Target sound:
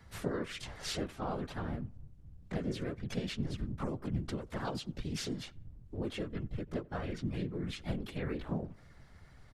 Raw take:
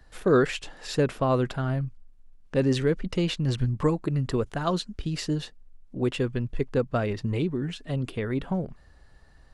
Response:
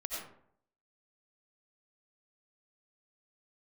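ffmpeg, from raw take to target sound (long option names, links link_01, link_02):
-filter_complex "[0:a]bandreject=frequency=450:width=13,acompressor=threshold=-32dB:ratio=16,afftfilt=real='hypot(re,im)*cos(2*PI*random(0))':imag='hypot(re,im)*sin(2*PI*random(1))':win_size=512:overlap=0.75,asplit=4[link_01][link_02][link_03][link_04];[link_02]asetrate=29433,aresample=44100,atempo=1.49831,volume=-11dB[link_05];[link_03]asetrate=35002,aresample=44100,atempo=1.25992,volume=-2dB[link_06];[link_04]asetrate=52444,aresample=44100,atempo=0.840896,volume=-1dB[link_07];[link_01][link_05][link_06][link_07]amix=inputs=4:normalize=0,asplit=2[link_08][link_09];[link_09]adelay=90,lowpass=frequency=1800:poles=1,volume=-23.5dB,asplit=2[link_10][link_11];[link_11]adelay=90,lowpass=frequency=1800:poles=1,volume=0.49,asplit=2[link_12][link_13];[link_13]adelay=90,lowpass=frequency=1800:poles=1,volume=0.49[link_14];[link_08][link_10][link_12][link_14]amix=inputs=4:normalize=0,volume=1dB"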